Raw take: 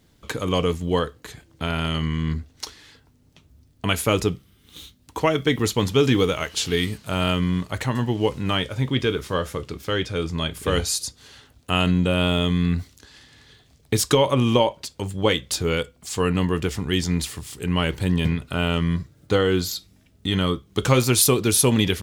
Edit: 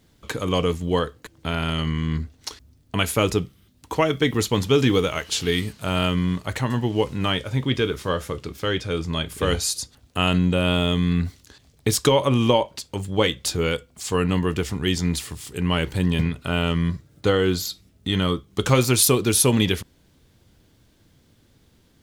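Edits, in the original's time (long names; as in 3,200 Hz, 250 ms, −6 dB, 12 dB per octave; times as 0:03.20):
compress silence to 35%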